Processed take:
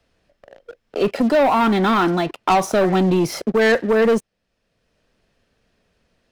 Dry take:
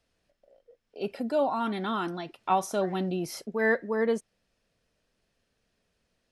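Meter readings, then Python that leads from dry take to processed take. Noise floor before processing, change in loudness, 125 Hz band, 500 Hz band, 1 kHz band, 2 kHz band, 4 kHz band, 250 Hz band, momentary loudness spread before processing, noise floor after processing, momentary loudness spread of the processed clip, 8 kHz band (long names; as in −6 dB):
−77 dBFS, +11.5 dB, +14.0 dB, +11.5 dB, +11.0 dB, +9.5 dB, +13.0 dB, +13.0 dB, 8 LU, −73 dBFS, 6 LU, +9.0 dB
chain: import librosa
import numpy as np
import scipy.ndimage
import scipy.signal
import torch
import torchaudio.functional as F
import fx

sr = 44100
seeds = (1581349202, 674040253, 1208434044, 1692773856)

y = fx.high_shelf(x, sr, hz=5300.0, db=-9.0)
y = fx.leveller(y, sr, passes=3)
y = fx.band_squash(y, sr, depth_pct=40)
y = F.gain(torch.from_numpy(y), 4.5).numpy()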